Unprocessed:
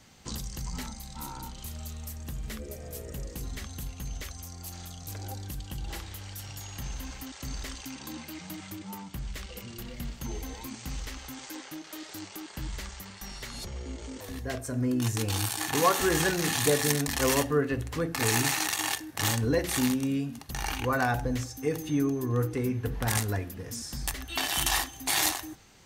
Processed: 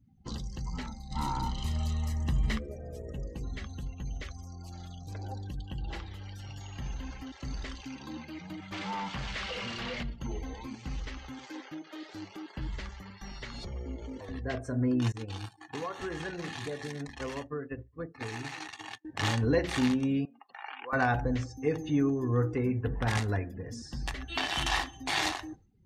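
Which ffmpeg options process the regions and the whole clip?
ffmpeg -i in.wav -filter_complex "[0:a]asettb=1/sr,asplit=3[link_01][link_02][link_03];[link_01]atrim=end=1.114[link_04];[link_02]atrim=start=1.11:end=2.59,asetpts=PTS-STARTPTS,afade=type=in:duration=0.004:curve=qsin,afade=type=out:start_time=1.476:duration=0.004:curve=qsin,highshelf=frequency=9000:gain=3.5,aecho=1:1:1:0.37,atrim=end_sample=65268,acontrast=70[link_05];[link_03]atrim=start=2.586[link_06];[link_04][link_05]acrossfade=duration=0.004:curve1=hsin:curve2=qsin[link_07];[link_07][link_06]acrossfade=duration=0.004:curve1=qsin:curve2=hsin,asettb=1/sr,asplit=3[link_08][link_09][link_10];[link_08]atrim=end=8.724[link_11];[link_09]atrim=start=8.72:end=10.03,asetpts=PTS-STARTPTS,afade=type=in:duration=0.004:curve=qsin,afade=type=out:start_time=1.306:duration=0.004:curve=qsin,acrossover=split=7400[link_12][link_13];[link_13]acompressor=threshold=-52dB:ratio=4:attack=1:release=60[link_14];[link_12][link_14]amix=inputs=2:normalize=0,equalizer=frequency=330:width=4:gain=-10.5,asplit=2[link_15][link_16];[link_16]highpass=frequency=720:poles=1,volume=25dB,asoftclip=type=tanh:threshold=-27dB[link_17];[link_15][link_17]amix=inputs=2:normalize=0,lowpass=frequency=6600:poles=1,volume=-6dB[link_18];[link_10]atrim=start=10.026[link_19];[link_11][link_18]acrossfade=duration=0.004:curve1=hsin:curve2=qsin[link_20];[link_20][link_19]acrossfade=duration=0.004:curve1=qsin:curve2=hsin,asettb=1/sr,asplit=3[link_21][link_22][link_23];[link_21]atrim=end=15.124[link_24];[link_22]atrim=start=15.12:end=19.05,asetpts=PTS-STARTPTS,afade=type=in:duration=0.004:curve=qsin,afade=type=out:start_time=3.926:duration=0.004:curve=qsin,aecho=1:1:556:0.0794,atrim=end_sample=173313,agate=range=-33dB:threshold=-23dB:ratio=3:release=100:detection=peak,acompressor=threshold=-31dB:ratio=16:attack=3.2:release=140:knee=1:detection=peak[link_25];[link_23]atrim=start=19.046[link_26];[link_24][link_25]acrossfade=duration=0.004:curve1=hsin:curve2=qsin[link_27];[link_27][link_26]acrossfade=duration=0.004:curve1=qsin:curve2=hsin,asettb=1/sr,asplit=3[link_28][link_29][link_30];[link_28]atrim=end=20.254[link_31];[link_29]atrim=start=20.25:end=20.93,asetpts=PTS-STARTPTS,afade=type=in:duration=0.004:curve=qsin,afade=type=out:start_time=0.676:duration=0.004:curve=qsin,acompressor=threshold=-36dB:ratio=2:attack=3.2:release=140:knee=1:detection=peak,highpass=650,lowpass=2700[link_32];[link_30]atrim=start=20.926[link_33];[link_31][link_32]acrossfade=duration=0.004:curve1=hsin:curve2=qsin[link_34];[link_34][link_33]acrossfade=duration=0.004:curve1=qsin:curve2=hsin,afftdn=noise_reduction=34:noise_floor=-49,lowpass=4000" out.wav

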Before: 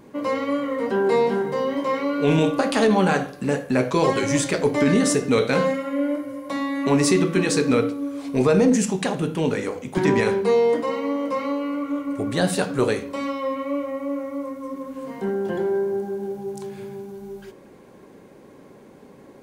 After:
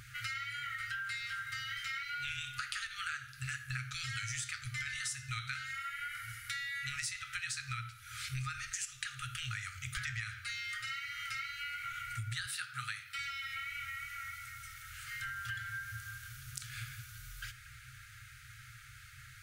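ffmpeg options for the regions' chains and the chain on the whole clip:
ffmpeg -i in.wav -filter_complex "[0:a]asettb=1/sr,asplit=3[link_01][link_02][link_03];[link_01]atrim=end=12.464[link_04];[link_02]atrim=start=12.46:end=13.19,asetpts=PTS-STARTPTS,afade=type=in:duration=0.004:curve=qsin,afade=type=out:start_time=0.726:duration=0.004:curve=qsin,highpass=220,equalizer=frequency=6800:width_type=o:width=0.52:gain=-6.5[link_05];[link_03]atrim=start=13.186[link_06];[link_04][link_05]acrossfade=duration=0.004:curve1=hsin:curve2=qsin[link_07];[link_07][link_06]acrossfade=duration=0.004:curve1=qsin:curve2=hsin,afftfilt=real='re*(1-between(b*sr/4096,130,1200))':imag='im*(1-between(b*sr/4096,130,1200))':win_size=4096:overlap=0.75,acompressor=threshold=-44dB:ratio=8,volume=6.5dB" out.wav

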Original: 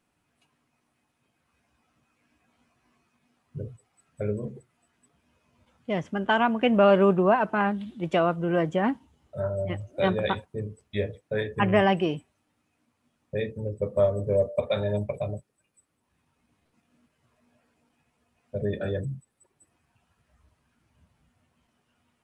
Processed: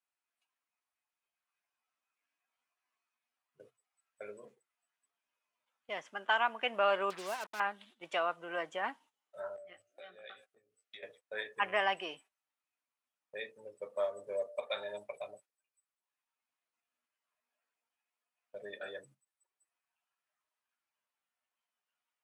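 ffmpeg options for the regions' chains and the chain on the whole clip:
ffmpeg -i in.wav -filter_complex "[0:a]asettb=1/sr,asplit=3[link_01][link_02][link_03];[link_01]atrim=end=7.104[link_04];[link_02]atrim=start=7.1:end=7.6,asetpts=PTS-STARTPTS,afade=type=in:duration=0.004:curve=qsin,afade=type=out:start_time=0.496:duration=0.004:curve=qsin,equalizer=frequency=1100:width=0.59:gain=-11.5,acrusher=bits=5:mix=0:aa=0.5[link_05];[link_03]atrim=start=7.596[link_06];[link_04][link_05]acrossfade=duration=0.004:curve1=hsin:curve2=qsin[link_07];[link_07][link_06]acrossfade=duration=0.004:curve1=qsin:curve2=hsin,asettb=1/sr,asplit=3[link_08][link_09][link_10];[link_08]atrim=end=9.564[link_11];[link_09]atrim=start=9.56:end=11.03,asetpts=PTS-STARTPTS,afade=type=in:duration=0.004:curve=qsin,afade=type=out:start_time=1.466:duration=0.004:curve=qsin,acompressor=threshold=-37dB:ratio=16:attack=3.2:release=140:knee=1:detection=peak,asuperstop=centerf=950:order=4:qfactor=2.4,asplit=2[link_12][link_13];[link_13]adelay=17,volume=-4dB[link_14];[link_12][link_14]amix=inputs=2:normalize=0,atrim=end_sample=64827[link_15];[link_10]atrim=start=11.026[link_16];[link_11][link_15]acrossfade=duration=0.004:curve1=hsin:curve2=qsin[link_17];[link_17][link_16]acrossfade=duration=0.004:curve1=qsin:curve2=hsin,highpass=900,agate=range=-12dB:threshold=-56dB:ratio=16:detection=peak,volume=-4dB" out.wav

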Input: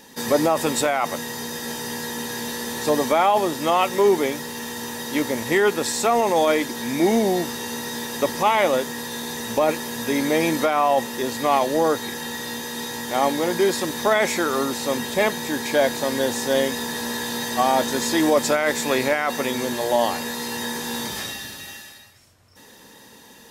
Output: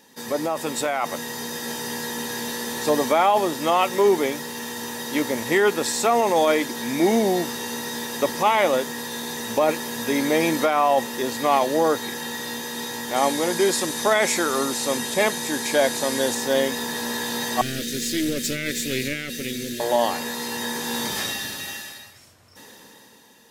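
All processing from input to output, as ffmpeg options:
ffmpeg -i in.wav -filter_complex "[0:a]asettb=1/sr,asplit=3[link_01][link_02][link_03];[link_01]atrim=end=13.164[link_04];[link_02]atrim=start=13.16:end=16.35,asetpts=PTS-STARTPTS,afade=type=in:duration=0.004:curve=qsin,afade=type=out:start_time=3.186:duration=0.004:curve=qsin,lowpass=frequency=11000:width=0.5412,lowpass=frequency=11000:width=1.3066,highshelf=frequency=7000:gain=11,aeval=exprs='sgn(val(0))*max(abs(val(0))-0.00251,0)':channel_layout=same[link_05];[link_03]atrim=start=16.346[link_06];[link_04][link_05]acrossfade=duration=0.004:curve1=hsin:curve2=qsin[link_07];[link_07][link_06]acrossfade=duration=0.004:curve1=qsin:curve2=hsin,asettb=1/sr,asplit=3[link_08][link_09][link_10];[link_08]atrim=end=17.614[link_11];[link_09]atrim=start=17.61:end=19.8,asetpts=PTS-STARTPTS,afade=type=in:duration=0.004:curve=qsin,afade=type=out:start_time=2.186:duration=0.004:curve=qsin,aeval=exprs='clip(val(0),-1,0.0355)':channel_layout=same,asuperstop=centerf=910:order=4:qfactor=0.52[link_12];[link_10]atrim=start=19.796[link_13];[link_11][link_12]acrossfade=duration=0.004:curve1=hsin:curve2=qsin[link_14];[link_14][link_13]acrossfade=duration=0.004:curve1=qsin:curve2=hsin,lowshelf=frequency=68:gain=-11,dynaudnorm=framelen=210:gausssize=9:maxgain=11.5dB,volume=-6.5dB" out.wav

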